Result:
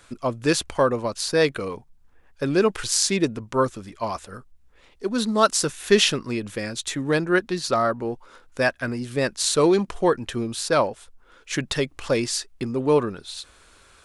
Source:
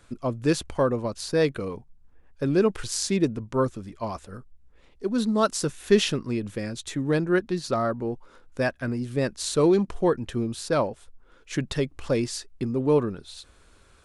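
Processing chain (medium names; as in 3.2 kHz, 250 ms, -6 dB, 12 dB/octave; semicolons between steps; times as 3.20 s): bass shelf 500 Hz -9.5 dB; trim +7.5 dB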